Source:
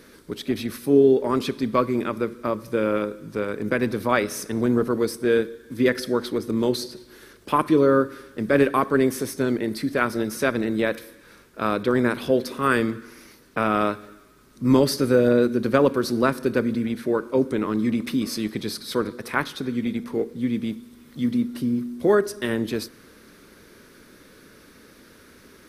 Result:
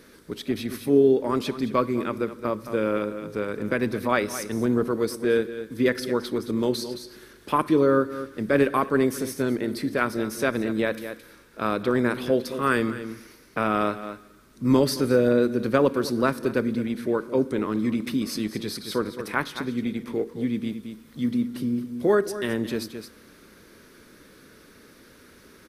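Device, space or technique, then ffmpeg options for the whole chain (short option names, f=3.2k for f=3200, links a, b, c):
ducked delay: -filter_complex "[0:a]asplit=3[a][b][c];[b]adelay=218,volume=-8dB[d];[c]apad=whole_len=1142287[e];[d][e]sidechaincompress=threshold=-28dB:ratio=8:attack=44:release=320[f];[a][f]amix=inputs=2:normalize=0,volume=-2dB"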